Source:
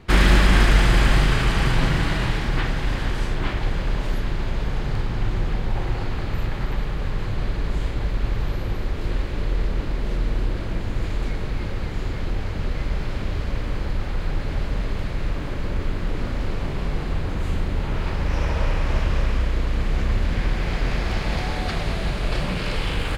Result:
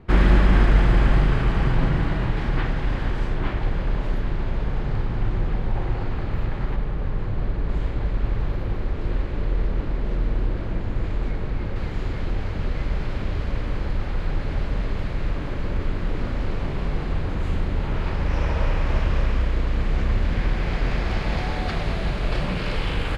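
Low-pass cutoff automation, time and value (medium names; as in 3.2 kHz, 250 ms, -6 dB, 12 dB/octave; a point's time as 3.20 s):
low-pass 6 dB/octave
1 kHz
from 2.37 s 1.7 kHz
from 6.76 s 1.1 kHz
from 7.69 s 1.7 kHz
from 11.76 s 3.6 kHz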